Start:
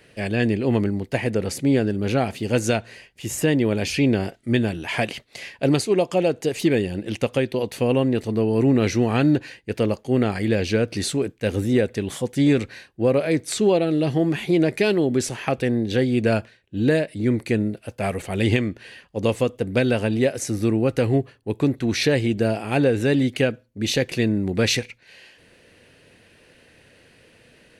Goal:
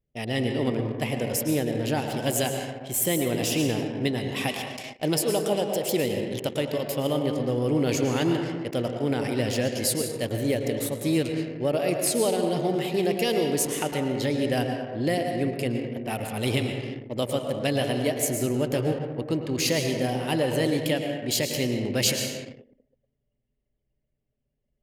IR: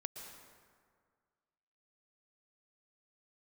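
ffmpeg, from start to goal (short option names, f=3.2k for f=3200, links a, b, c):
-filter_complex "[1:a]atrim=start_sample=2205[a];[0:a][a]afir=irnorm=-1:irlink=0,anlmdn=1.58,asetrate=49392,aresample=44100,aemphasis=mode=production:type=50fm,volume=-2.5dB"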